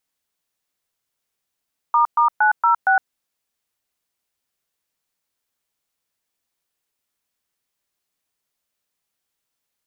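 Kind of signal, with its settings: DTMF "**906", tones 0.112 s, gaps 0.12 s, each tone -15 dBFS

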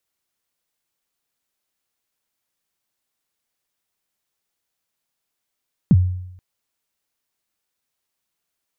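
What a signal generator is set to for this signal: kick drum length 0.48 s, from 230 Hz, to 91 Hz, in 41 ms, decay 0.80 s, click off, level -6.5 dB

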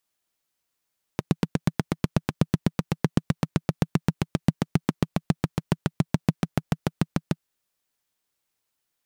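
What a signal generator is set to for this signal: single-cylinder engine model, changing speed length 6.23 s, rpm 1000, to 800, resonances 160 Hz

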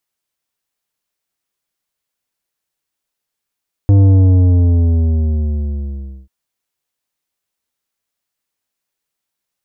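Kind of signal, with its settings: sub drop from 100 Hz, over 2.39 s, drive 10 dB, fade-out 2.26 s, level -6.5 dB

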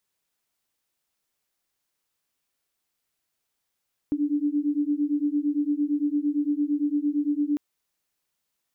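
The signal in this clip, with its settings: beating tones 288 Hz, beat 8.8 Hz, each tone -25 dBFS 3.45 s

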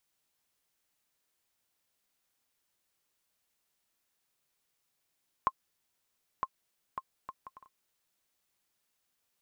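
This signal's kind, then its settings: bouncing ball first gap 0.96 s, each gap 0.57, 1060 Hz, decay 48 ms -15 dBFS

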